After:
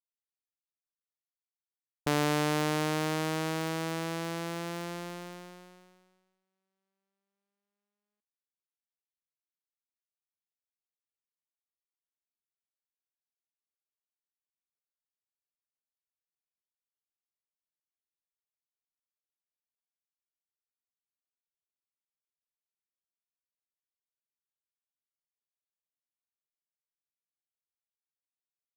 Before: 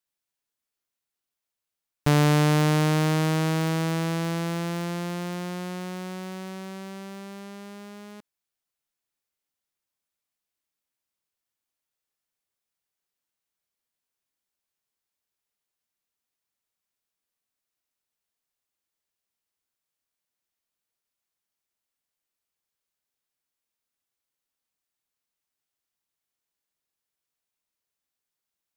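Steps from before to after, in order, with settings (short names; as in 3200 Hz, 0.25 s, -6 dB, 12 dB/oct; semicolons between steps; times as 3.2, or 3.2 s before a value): gate -31 dBFS, range -42 dB; bell 130 Hz -11.5 dB 0.96 oct; gain -4.5 dB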